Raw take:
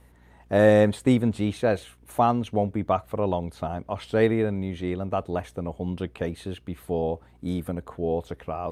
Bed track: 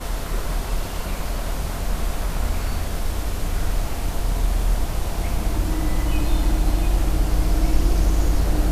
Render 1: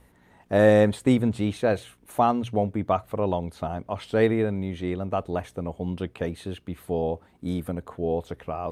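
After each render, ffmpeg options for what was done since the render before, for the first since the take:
-af "bandreject=f=60:t=h:w=4,bandreject=f=120:t=h:w=4"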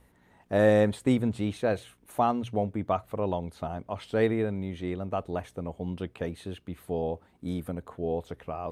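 -af "volume=0.631"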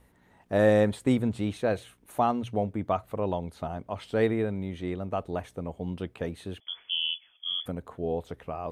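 -filter_complex "[0:a]asettb=1/sr,asplit=3[s0][s1][s2];[s0]atrim=end=6.604[s3];[s1]atrim=start=6.6:end=7.66,asetpts=PTS-STARTPTS,afade=t=in:d=0.004:c=qsin,afade=t=out:st=1.056:d=0.004:c=qsin,lowpass=f=3000:t=q:w=0.5098,lowpass=f=3000:t=q:w=0.6013,lowpass=f=3000:t=q:w=0.9,lowpass=f=3000:t=q:w=2.563,afreqshift=-3500[s4];[s2]atrim=start=7.656[s5];[s3][s4]acrossfade=d=0.004:c1=hsin:c2=qsin[s6];[s6][s5]acrossfade=d=0.004:c1=qsin:c2=hsin"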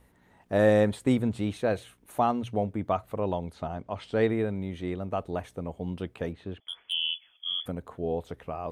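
-filter_complex "[0:a]asettb=1/sr,asplit=3[s0][s1][s2];[s0]atrim=end=3.534[s3];[s1]atrim=start=3.53:end=4.3,asetpts=PTS-STARTPTS,afade=t=in:d=0.004:c=qsin,afade=t=out:st=0.766:d=0.004:c=qsin,lowpass=7500[s4];[s2]atrim=start=4.296[s5];[s3][s4]acrossfade=d=0.004:c1=hsin:c2=qsin[s6];[s6][s5]acrossfade=d=0.004:c1=qsin:c2=hsin,asplit=3[s7][s8][s9];[s7]afade=t=out:st=6.32:d=0.02[s10];[s8]adynamicsmooth=sensitivity=4.5:basefreq=2600,afade=t=in:st=6.32:d=0.02,afade=t=out:st=6.92:d=0.02[s11];[s9]afade=t=in:st=6.92:d=0.02[s12];[s10][s11][s12]amix=inputs=3:normalize=0"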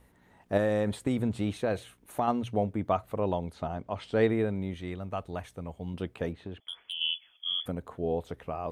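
-filter_complex "[0:a]asettb=1/sr,asplit=3[s0][s1][s2];[s0]atrim=end=0.574[s3];[s1]atrim=start=0.57:end=2.28,asetpts=PTS-STARTPTS,afade=t=in:d=0.004:c=qsin,afade=t=out:st=1.706:d=0.004:c=qsin,acompressor=threshold=0.0708:ratio=6:attack=3.2:release=140:knee=1:detection=peak[s4];[s2]atrim=start=2.276[s5];[s3][s4]acrossfade=d=0.004:c1=hsin:c2=qsin[s6];[s6][s5]acrossfade=d=0.004:c1=qsin:c2=hsin,asettb=1/sr,asplit=3[s7][s8][s9];[s7]atrim=end=4.744[s10];[s8]atrim=start=4.74:end=5.94,asetpts=PTS-STARTPTS,afade=t=in:d=0.004:c=qsin,afade=t=out:st=1.196:d=0.004:c=qsin,equalizer=f=380:w=0.54:g=-6.5[s11];[s9]atrim=start=5.936[s12];[s10][s11]acrossfade=d=0.004:c1=hsin:c2=qsin[s13];[s13][s12]acrossfade=d=0.004:c1=qsin:c2=hsin,asettb=1/sr,asplit=3[s14][s15][s16];[s14]atrim=end=6.444[s17];[s15]atrim=start=6.44:end=7.01,asetpts=PTS-STARTPTS,afade=t=in:d=0.004:c=qsin,afade=t=out:st=0.566:d=0.004:c=qsin,acompressor=threshold=0.0224:ratio=4:attack=3.2:release=140:knee=1:detection=peak[s18];[s16]atrim=start=7.006[s19];[s17][s18]acrossfade=d=0.004:c1=hsin:c2=qsin[s20];[s20][s19]acrossfade=d=0.004:c1=qsin:c2=hsin"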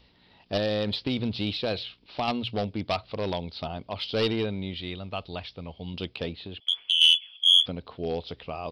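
-af "aresample=11025,volume=11.9,asoftclip=hard,volume=0.0841,aresample=44100,aexciter=amount=3.5:drive=9.3:freq=2600"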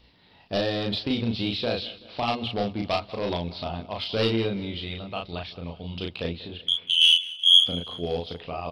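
-filter_complex "[0:a]asplit=2[s0][s1];[s1]adelay=35,volume=0.75[s2];[s0][s2]amix=inputs=2:normalize=0,aecho=1:1:190|380|570|760:0.106|0.0583|0.032|0.0176"

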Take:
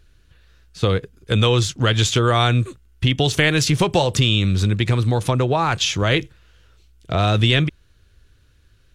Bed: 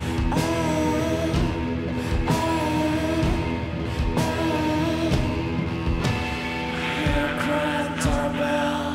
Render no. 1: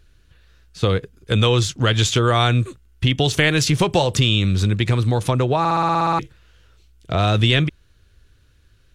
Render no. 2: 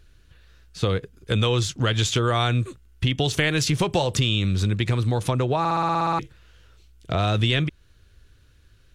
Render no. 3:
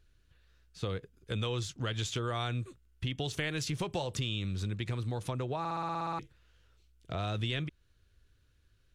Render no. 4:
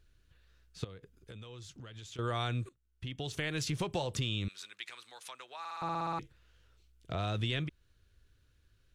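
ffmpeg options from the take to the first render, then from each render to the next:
-filter_complex "[0:a]asplit=11[s0][s1][s2][s3][s4][s5][s6][s7][s8][s9][s10];[s0]atrim=end=5.652[s11];[s1]atrim=start=5.588:end=5.652[s12];[s2]atrim=start=5.588:end=5.652[s13];[s3]atrim=start=5.588:end=5.652[s14];[s4]atrim=start=5.588:end=5.652[s15];[s5]atrim=start=5.588:end=5.652[s16];[s6]atrim=start=5.588:end=5.652[s17];[s7]atrim=start=5.588:end=5.652[s18];[s8]atrim=start=5.588:end=5.652[s19];[s9]atrim=start=5.588:end=5.652[s20];[s10]atrim=start=6.188[s21];[s11][s12]acrossfade=d=0.004:c1=hsin:c2=hsin[s22];[s22][s13]acrossfade=d=0.004:c1=hsin:c2=hsin[s23];[s23][s14]acrossfade=d=0.004:c1=hsin:c2=hsin[s24];[s24][s15]acrossfade=d=0.004:c1=hsin:c2=hsin[s25];[s25][s16]acrossfade=d=0.004:c1=hsin:c2=hsin[s26];[s26][s17]acrossfade=d=0.004:c1=hsin:c2=hsin[s27];[s27][s18]acrossfade=d=0.004:c1=hsin:c2=hsin[s28];[s28][s19]acrossfade=d=0.004:c1=hsin:c2=hsin[s29];[s29][s20]acrossfade=d=0.004:c1=hsin:c2=hsin[s30];[s30][s21]acrossfade=d=0.004:c1=hsin:c2=hsin"
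-af "acompressor=threshold=0.0501:ratio=1.5"
-af "volume=0.237"
-filter_complex "[0:a]asettb=1/sr,asplit=3[s0][s1][s2];[s0]atrim=end=0.844[s3];[s1]atrim=start=0.84:end=2.19,asetpts=PTS-STARTPTS,afade=t=in:d=0.004:c=qsin,afade=t=out:st=1.346:d=0.004:c=qsin,acompressor=threshold=0.00501:ratio=6:attack=3.2:release=140:knee=1:detection=peak[s4];[s2]atrim=start=2.186[s5];[s3][s4]acrossfade=d=0.004:c1=hsin:c2=qsin[s6];[s6][s5]acrossfade=d=0.004:c1=qsin:c2=hsin,asettb=1/sr,asplit=3[s7][s8][s9];[s7]atrim=end=4.484[s10];[s8]atrim=start=4.48:end=5.82,asetpts=PTS-STARTPTS,afade=t=in:d=0.004:c=qsin,afade=t=out:st=1.336:d=0.004:c=qsin,highpass=1400[s11];[s9]atrim=start=5.816[s12];[s10][s11]acrossfade=d=0.004:c1=hsin:c2=qsin[s13];[s13][s12]acrossfade=d=0.004:c1=qsin:c2=hsin,asplit=2[s14][s15];[s14]atrim=end=2.69,asetpts=PTS-STARTPTS,afade=t=out:st=2.686:d=0.004:c=hsin:silence=0.11885[s16];[s15]atrim=start=2.69,asetpts=PTS-STARTPTS,afade=t=in:d=0.93:silence=0.11885[s17];[s16][s17]concat=n=2:v=0:a=1"

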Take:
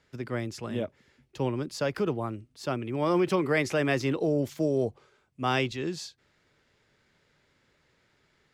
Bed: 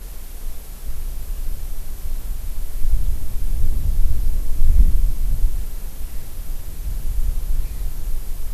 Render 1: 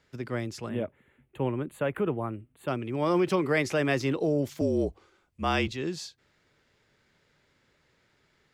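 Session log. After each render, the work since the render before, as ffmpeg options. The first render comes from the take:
-filter_complex "[0:a]asettb=1/sr,asplit=3[s0][s1][s2];[s0]atrim=end=0.694[s3];[s1]atrim=start=0.69:end=2.68,asetpts=PTS-STARTPTS,afade=t=in:d=0.004:c=qsin,afade=t=out:st=1.986:d=0.004:c=qsin,asuperstop=centerf=5300:order=4:qfactor=0.84[s4];[s2]atrim=start=2.676[s5];[s3][s4]acrossfade=d=0.004:c1=hsin:c2=qsin[s6];[s6][s5]acrossfade=d=0.004:c1=qsin:c2=hsin,asettb=1/sr,asplit=3[s7][s8][s9];[s7]atrim=end=4.614[s10];[s8]atrim=start=4.61:end=5.68,asetpts=PTS-STARTPTS,afade=t=in:d=0.004:c=qsin,afade=t=out:st=1.066:d=0.004:c=qsin,afreqshift=-43[s11];[s9]atrim=start=5.676[s12];[s10][s11]acrossfade=d=0.004:c1=hsin:c2=qsin[s13];[s13][s12]acrossfade=d=0.004:c1=qsin:c2=hsin"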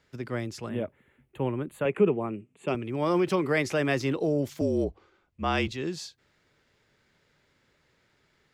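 -filter_complex "[0:a]asettb=1/sr,asplit=3[s0][s1][s2];[s0]atrim=end=1.854[s3];[s1]atrim=start=1.85:end=2.75,asetpts=PTS-STARTPTS,afade=t=in:d=0.004:c=qsin,afade=t=out:st=0.896:d=0.004:c=qsin,highpass=130,equalizer=f=190:t=q:w=4:g=9,equalizer=f=410:t=q:w=4:g=8,equalizer=f=1500:t=q:w=4:g=-5,equalizer=f=2500:t=q:w=4:g=9,equalizer=f=4000:t=q:w=4:g=-5,equalizer=f=7200:t=q:w=4:g=6,lowpass=f=9000:w=0.5412,lowpass=f=9000:w=1.3066[s4];[s2]atrim=start=2.746[s5];[s3][s4]acrossfade=d=0.004:c1=hsin:c2=qsin[s6];[s6][s5]acrossfade=d=0.004:c1=qsin:c2=hsin,asettb=1/sr,asplit=3[s7][s8][s9];[s7]atrim=end=4.844[s10];[s8]atrim=start=4.84:end=5.58,asetpts=PTS-STARTPTS,afade=t=in:d=0.004:c=qsin,afade=t=out:st=0.736:d=0.004:c=qsin,adynamicsmooth=sensitivity=1:basefreq=5500[s11];[s9]atrim=start=5.576[s12];[s10][s11]acrossfade=d=0.004:c1=hsin:c2=qsin[s13];[s13][s12]acrossfade=d=0.004:c1=qsin:c2=hsin"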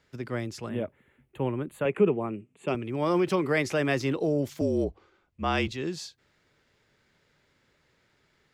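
-af anull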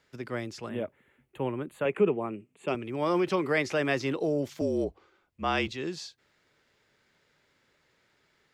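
-filter_complex "[0:a]acrossover=split=6900[s0][s1];[s1]acompressor=threshold=0.00141:ratio=4:attack=1:release=60[s2];[s0][s2]amix=inputs=2:normalize=0,lowshelf=f=200:g=-7.5"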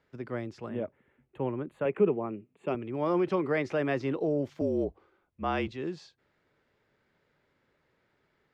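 -af "lowpass=f=1200:p=1"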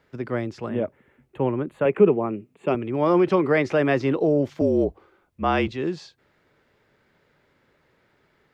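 -af "volume=2.66"

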